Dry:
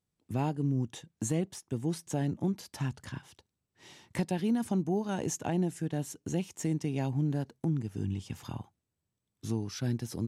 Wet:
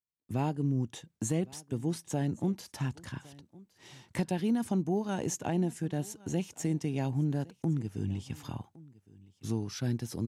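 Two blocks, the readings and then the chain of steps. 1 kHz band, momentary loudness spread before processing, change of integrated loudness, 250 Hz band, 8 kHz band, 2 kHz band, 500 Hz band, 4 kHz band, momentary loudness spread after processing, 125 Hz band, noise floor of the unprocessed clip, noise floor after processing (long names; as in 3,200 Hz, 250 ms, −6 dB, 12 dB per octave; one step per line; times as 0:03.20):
0.0 dB, 10 LU, 0.0 dB, 0.0 dB, 0.0 dB, 0.0 dB, 0.0 dB, 0.0 dB, 12 LU, 0.0 dB, below −85 dBFS, −74 dBFS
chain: single-tap delay 1,112 ms −22.5 dB
noise gate with hold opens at −59 dBFS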